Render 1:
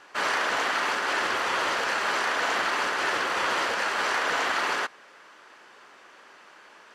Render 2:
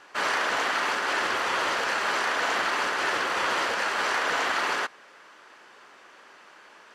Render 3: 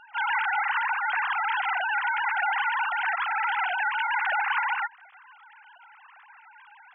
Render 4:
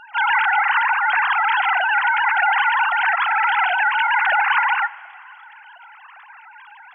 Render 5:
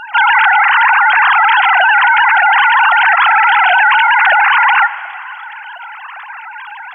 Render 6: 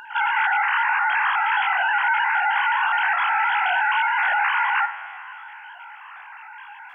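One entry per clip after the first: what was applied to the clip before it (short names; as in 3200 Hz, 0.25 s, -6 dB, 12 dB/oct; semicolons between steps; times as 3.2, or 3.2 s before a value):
nothing audible
sine-wave speech
Schroeder reverb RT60 2.5 s, combs from 28 ms, DRR 18.5 dB; gain +8.5 dB
maximiser +15.5 dB; gain -1 dB
stepped spectrum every 50 ms; gain -9 dB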